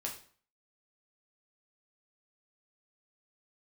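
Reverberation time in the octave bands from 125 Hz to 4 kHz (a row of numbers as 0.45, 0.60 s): 0.50, 0.50, 0.45, 0.50, 0.45, 0.40 s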